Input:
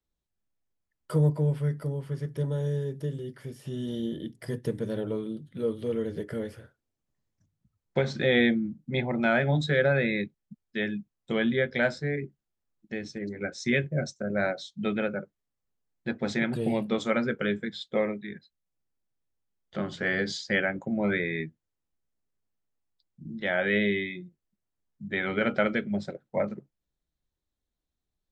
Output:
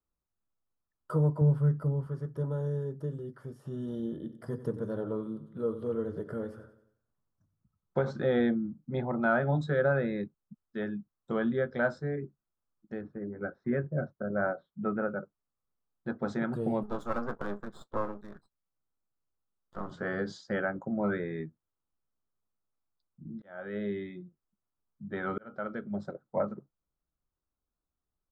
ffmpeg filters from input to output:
ffmpeg -i in.wav -filter_complex "[0:a]asettb=1/sr,asplit=3[link_01][link_02][link_03];[link_01]atrim=end=1.414[link_04];[link_02]atrim=start=1.41:end=2.07,asetpts=PTS-STARTPTS,afade=type=in:duration=0.004:curve=qsin,afade=type=out:start_time=0.656:duration=0.004:curve=qsin,equalizer=frequency=92:width_type=o:width=2.1:gain=8[link_05];[link_03]atrim=start=2.066[link_06];[link_04][link_05]acrossfade=duration=0.004:curve1=hsin:curve2=qsin[link_07];[link_07][link_06]acrossfade=duration=0.004:curve1=qsin:curve2=hsin,asplit=3[link_08][link_09][link_10];[link_08]afade=type=out:start_time=4.23:duration=0.02[link_11];[link_09]aecho=1:1:92|184|276|368|460:0.2|0.0958|0.046|0.0221|0.0106,afade=type=in:start_time=4.23:duration=0.02,afade=type=out:start_time=8.1:duration=0.02[link_12];[link_10]afade=type=in:start_time=8.1:duration=0.02[link_13];[link_11][link_12][link_13]amix=inputs=3:normalize=0,asettb=1/sr,asplit=3[link_14][link_15][link_16];[link_14]atrim=end=13.014[link_17];[link_15]atrim=start=13.01:end=15.09,asetpts=PTS-STARTPTS,afade=type=in:duration=0.004:curve=qsin,afade=type=out:start_time=2.076:duration=0.004:curve=qsin,lowpass=frequency=2000:width=0.5412,lowpass=frequency=2000:width=1.3066[link_18];[link_16]atrim=start=15.086[link_19];[link_17][link_18]acrossfade=duration=0.004:curve1=hsin:curve2=qsin[link_20];[link_20][link_19]acrossfade=duration=0.004:curve1=qsin:curve2=hsin,asettb=1/sr,asplit=3[link_21][link_22][link_23];[link_21]atrim=end=16.834[link_24];[link_22]atrim=start=16.83:end=19.91,asetpts=PTS-STARTPTS,afade=type=in:duration=0.004:curve=qsin,afade=type=out:start_time=3.076:duration=0.004:curve=qsin,aeval=exprs='max(val(0),0)':channel_layout=same[link_25];[link_23]atrim=start=19.906[link_26];[link_24][link_25]acrossfade=duration=0.004:curve1=hsin:curve2=qsin[link_27];[link_27][link_26]acrossfade=duration=0.004:curve1=qsin:curve2=hsin,asplit=3[link_28][link_29][link_30];[link_28]atrim=end=23.42,asetpts=PTS-STARTPTS,afade=type=out:start_time=23.416:duration=0.004:curve=hsin[link_31];[link_29]atrim=start=23.42:end=25.38,asetpts=PTS-STARTPTS,afade=type=in:duration=0.69,afade=type=out:start_time=1.956:duration=0.004:curve=hsin[link_32];[link_30]atrim=start=25.38,asetpts=PTS-STARTPTS,afade=type=in:duration=0.73[link_33];[link_31][link_32][link_33]concat=n=3:v=0:a=1,highshelf=frequency=1700:width_type=q:width=3:gain=-9.5,volume=-3.5dB" out.wav

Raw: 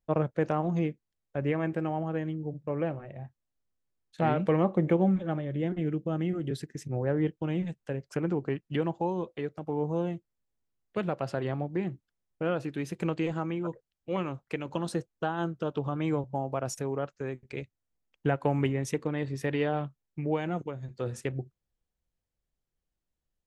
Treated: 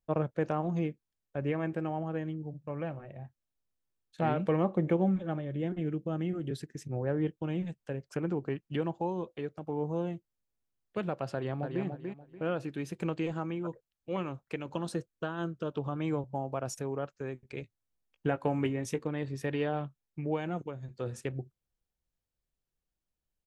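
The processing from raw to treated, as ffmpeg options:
ffmpeg -i in.wav -filter_complex "[0:a]asettb=1/sr,asplit=3[link_01][link_02][link_03];[link_01]atrim=end=2.424[link_04];[link_02]atrim=start=2.42:end=2.97,asetpts=PTS-STARTPTS,afade=type=in:duration=0.004:curve=qsin,afade=type=out:start_time=0.546:duration=0.004:curve=qsin,equalizer=frequency=390:width=1.5:gain=-6.5[link_05];[link_03]atrim=start=2.966[link_06];[link_04][link_05]acrossfade=duration=0.004:curve1=hsin:curve2=qsin[link_07];[link_07][link_06]acrossfade=duration=0.004:curve1=qsin:curve2=hsin,asplit=2[link_08][link_09];[link_09]afade=type=in:start_time=11.33:duration=0.01,afade=type=out:start_time=11.84:duration=0.01,aecho=0:1:290|580|870:0.530884|0.132721|0.0331803[link_10];[link_08][link_10]amix=inputs=2:normalize=0,asettb=1/sr,asplit=3[link_11][link_12][link_13];[link_11]atrim=end=14.964[link_14];[link_12]atrim=start=14.96:end=15.73,asetpts=PTS-STARTPTS,afade=type=in:duration=0.004:curve=qsin,afade=type=out:start_time=0.766:duration=0.004:curve=qsin,equalizer=frequency=800:width=6.1:gain=-10.5[link_15];[link_13]atrim=start=15.726[link_16];[link_14][link_15]acrossfade=duration=0.004:curve1=hsin:curve2=qsin[link_17];[link_17][link_16]acrossfade=duration=0.004:curve1=qsin:curve2=hsin,asettb=1/sr,asplit=3[link_18][link_19][link_20];[link_18]atrim=end=17.624[link_21];[link_19]atrim=start=17.62:end=18.99,asetpts=PTS-STARTPTS,afade=type=in:duration=0.004:curve=qsin,afade=type=out:start_time=1.366:duration=0.004:curve=qsin,asplit=2[link_22][link_23];[link_23]adelay=18,volume=-10dB[link_24];[link_22][link_24]amix=inputs=2:normalize=0,atrim=end_sample=60417[link_25];[link_20]atrim=start=18.986[link_26];[link_21][link_25]acrossfade=duration=0.004:curve1=hsin:curve2=qsin[link_27];[link_27][link_26]acrossfade=duration=0.004:curve1=qsin:curve2=hsin,bandreject=frequency=2000:width=21,volume=-3dB" out.wav

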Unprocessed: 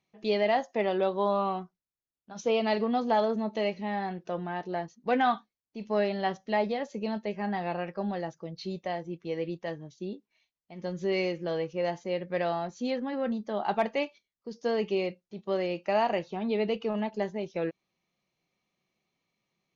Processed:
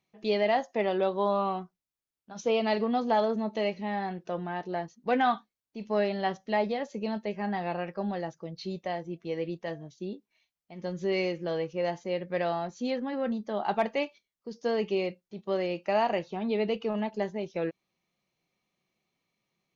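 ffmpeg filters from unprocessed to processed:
ffmpeg -i in.wav -filter_complex "[0:a]asplit=3[link_01][link_02][link_03];[link_01]afade=type=out:start_time=9.1:duration=0.02[link_04];[link_02]bandreject=frequency=223:width_type=h:width=4,bandreject=frequency=446:width_type=h:width=4,bandreject=frequency=669:width_type=h:width=4,afade=type=in:start_time=9.1:duration=0.02,afade=type=out:start_time=9.88:duration=0.02[link_05];[link_03]afade=type=in:start_time=9.88:duration=0.02[link_06];[link_04][link_05][link_06]amix=inputs=3:normalize=0" out.wav

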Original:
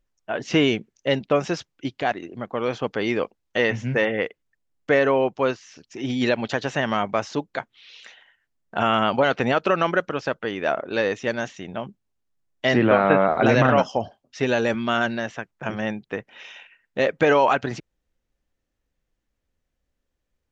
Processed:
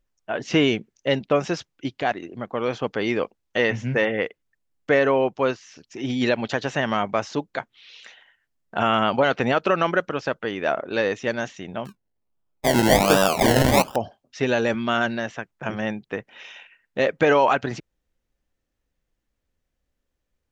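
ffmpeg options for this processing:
ffmpeg -i in.wav -filter_complex "[0:a]asettb=1/sr,asplit=3[link_01][link_02][link_03];[link_01]atrim=end=11.854[link_04];[link_02]atrim=start=11.85:end=13.96,asetpts=PTS-STARTPTS,afade=type=in:duration=0.004:curve=qsin,afade=type=out:start_time=2.106:duration=0.004:curve=qsin,acrusher=samples=29:mix=1:aa=0.000001:lfo=1:lforange=17.4:lforate=1.3[link_05];[link_03]atrim=start=13.956[link_06];[link_04][link_05]acrossfade=duration=0.004:curve1=hsin:curve2=qsin[link_07];[link_07][link_06]acrossfade=duration=0.004:curve1=qsin:curve2=hsin" out.wav

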